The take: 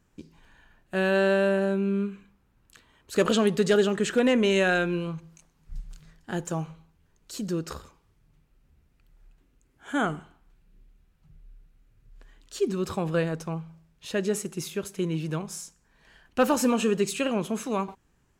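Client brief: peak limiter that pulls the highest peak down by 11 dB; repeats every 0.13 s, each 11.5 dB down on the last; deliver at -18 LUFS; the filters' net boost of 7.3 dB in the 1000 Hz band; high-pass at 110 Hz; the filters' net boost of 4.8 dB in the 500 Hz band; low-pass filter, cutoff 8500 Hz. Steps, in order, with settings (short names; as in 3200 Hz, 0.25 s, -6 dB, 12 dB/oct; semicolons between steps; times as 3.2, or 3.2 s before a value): HPF 110 Hz; LPF 8500 Hz; bell 500 Hz +4 dB; bell 1000 Hz +8.5 dB; limiter -15 dBFS; feedback echo 0.13 s, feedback 27%, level -11.5 dB; gain +9 dB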